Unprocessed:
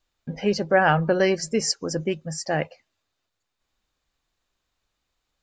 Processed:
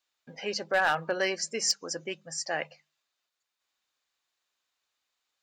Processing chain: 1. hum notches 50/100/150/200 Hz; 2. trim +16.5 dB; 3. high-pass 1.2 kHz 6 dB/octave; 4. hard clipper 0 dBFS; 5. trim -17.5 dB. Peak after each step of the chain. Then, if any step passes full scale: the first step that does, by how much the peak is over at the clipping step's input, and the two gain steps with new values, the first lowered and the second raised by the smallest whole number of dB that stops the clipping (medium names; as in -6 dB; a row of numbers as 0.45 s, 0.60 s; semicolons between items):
-7.0 dBFS, +9.5 dBFS, +7.0 dBFS, 0.0 dBFS, -17.5 dBFS; step 2, 7.0 dB; step 2 +9.5 dB, step 5 -10.5 dB